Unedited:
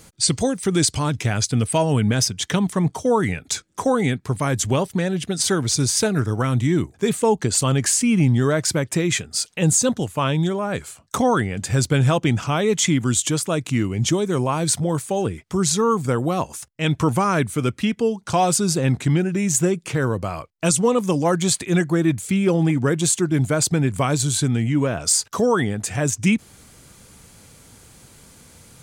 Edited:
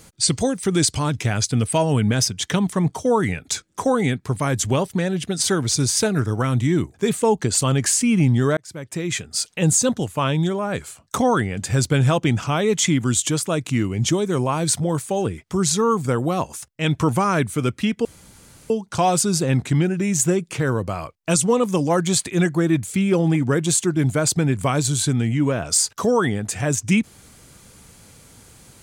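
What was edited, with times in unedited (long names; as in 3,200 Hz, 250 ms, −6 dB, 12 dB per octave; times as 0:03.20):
0:08.57–0:09.40: fade in
0:18.05: splice in room tone 0.65 s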